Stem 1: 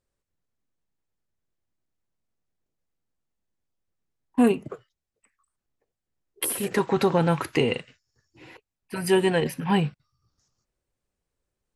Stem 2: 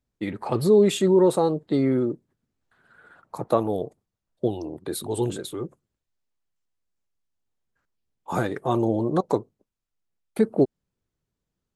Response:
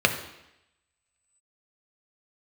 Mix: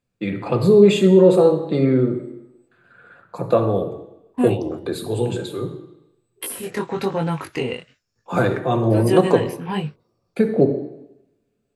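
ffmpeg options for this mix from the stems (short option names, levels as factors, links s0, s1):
-filter_complex "[0:a]flanger=delay=18.5:depth=5.5:speed=1.1,volume=1.12,asplit=2[s0][s1];[1:a]volume=0.794,asplit=2[s2][s3];[s3]volume=0.376[s4];[s1]apad=whole_len=518226[s5];[s2][s5]sidechaingate=range=0.0224:threshold=0.00141:ratio=16:detection=peak[s6];[2:a]atrim=start_sample=2205[s7];[s4][s7]afir=irnorm=-1:irlink=0[s8];[s0][s6][s8]amix=inputs=3:normalize=0"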